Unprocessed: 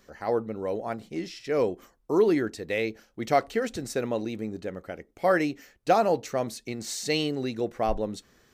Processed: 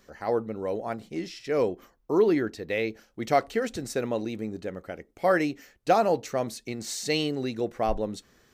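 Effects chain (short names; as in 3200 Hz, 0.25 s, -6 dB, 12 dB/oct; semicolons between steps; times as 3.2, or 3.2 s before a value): 1.68–2.9 bell 8600 Hz -7.5 dB 0.91 oct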